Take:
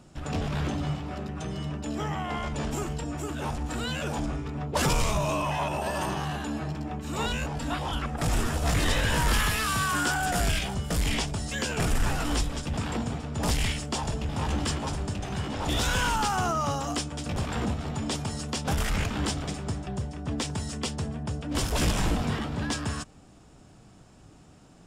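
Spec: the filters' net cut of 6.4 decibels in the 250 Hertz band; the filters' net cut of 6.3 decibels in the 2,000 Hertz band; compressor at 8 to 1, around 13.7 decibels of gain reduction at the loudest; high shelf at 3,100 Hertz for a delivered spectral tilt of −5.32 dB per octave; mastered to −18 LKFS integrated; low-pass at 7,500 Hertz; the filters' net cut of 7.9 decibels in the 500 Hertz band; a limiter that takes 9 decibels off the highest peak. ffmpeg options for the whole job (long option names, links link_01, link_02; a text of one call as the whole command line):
ffmpeg -i in.wav -af "lowpass=7500,equalizer=frequency=250:width_type=o:gain=-7,equalizer=frequency=500:width_type=o:gain=-8,equalizer=frequency=2000:width_type=o:gain=-5.5,highshelf=frequency=3100:gain=-7.5,acompressor=threshold=-36dB:ratio=8,volume=26.5dB,alimiter=limit=-9.5dB:level=0:latency=1" out.wav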